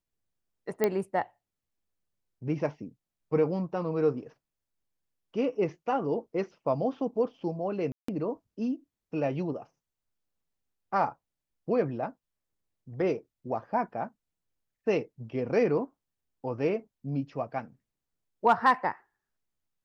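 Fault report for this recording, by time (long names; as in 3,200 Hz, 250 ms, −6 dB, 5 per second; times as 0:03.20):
0:00.84: click −12 dBFS
0:07.92–0:08.08: drop-out 164 ms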